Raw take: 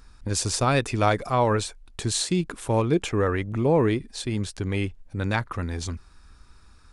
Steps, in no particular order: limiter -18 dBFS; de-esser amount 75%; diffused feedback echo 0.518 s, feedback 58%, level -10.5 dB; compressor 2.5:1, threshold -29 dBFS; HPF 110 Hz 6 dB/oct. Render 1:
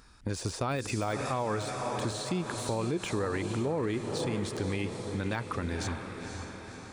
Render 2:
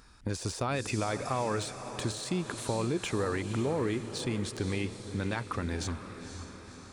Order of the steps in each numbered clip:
diffused feedback echo > de-esser > limiter > HPF > compressor; limiter > HPF > compressor > diffused feedback echo > de-esser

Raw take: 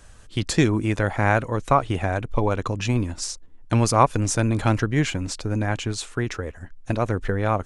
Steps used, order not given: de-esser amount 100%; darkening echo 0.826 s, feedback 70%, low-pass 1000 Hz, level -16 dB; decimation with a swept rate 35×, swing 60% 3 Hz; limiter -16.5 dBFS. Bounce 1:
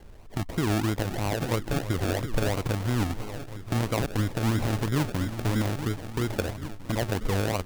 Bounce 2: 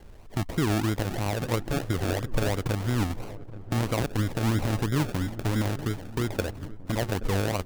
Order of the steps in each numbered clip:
darkening echo > limiter > de-esser > decimation with a swept rate; de-esser > limiter > decimation with a swept rate > darkening echo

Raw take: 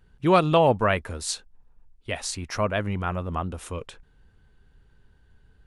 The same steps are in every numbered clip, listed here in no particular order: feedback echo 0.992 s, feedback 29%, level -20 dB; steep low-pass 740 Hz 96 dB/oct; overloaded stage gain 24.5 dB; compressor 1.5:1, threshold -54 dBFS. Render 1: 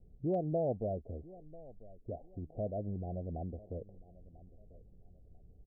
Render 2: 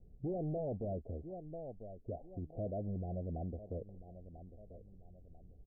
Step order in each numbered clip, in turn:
steep low-pass > compressor > feedback echo > overloaded stage; feedback echo > overloaded stage > steep low-pass > compressor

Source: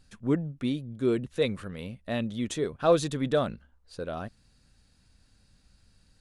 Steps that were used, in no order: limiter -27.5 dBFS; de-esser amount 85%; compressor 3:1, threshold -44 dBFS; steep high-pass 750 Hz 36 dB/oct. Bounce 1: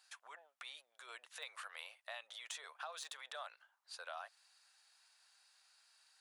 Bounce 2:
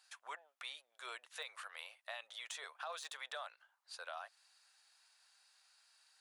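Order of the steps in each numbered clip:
de-esser > limiter > steep high-pass > compressor; de-esser > steep high-pass > limiter > compressor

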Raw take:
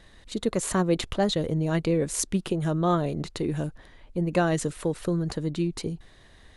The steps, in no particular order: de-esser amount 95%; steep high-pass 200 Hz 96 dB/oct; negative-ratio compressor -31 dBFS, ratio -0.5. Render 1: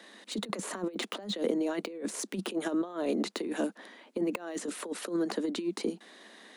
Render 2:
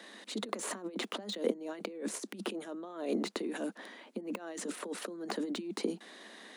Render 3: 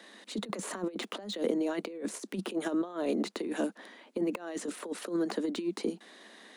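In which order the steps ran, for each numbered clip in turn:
steep high-pass > de-esser > negative-ratio compressor; negative-ratio compressor > steep high-pass > de-esser; steep high-pass > negative-ratio compressor > de-esser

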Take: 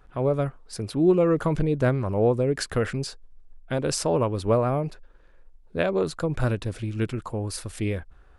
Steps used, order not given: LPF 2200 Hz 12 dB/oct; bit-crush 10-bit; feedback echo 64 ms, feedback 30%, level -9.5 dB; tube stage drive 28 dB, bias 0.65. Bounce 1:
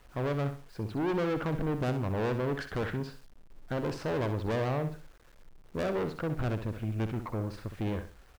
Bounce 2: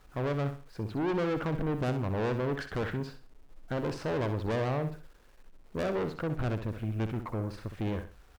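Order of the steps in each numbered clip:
LPF > tube stage > feedback echo > bit-crush; LPF > bit-crush > tube stage > feedback echo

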